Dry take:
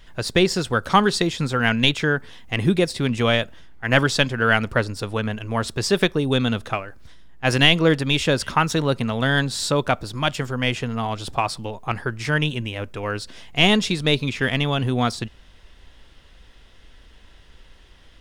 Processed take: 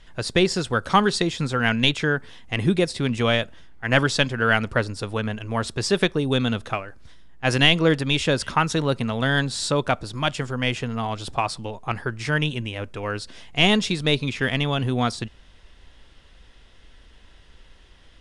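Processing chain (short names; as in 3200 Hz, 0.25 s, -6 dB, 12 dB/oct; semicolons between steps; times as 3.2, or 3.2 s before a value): steep low-pass 11000 Hz 48 dB/oct; gain -1.5 dB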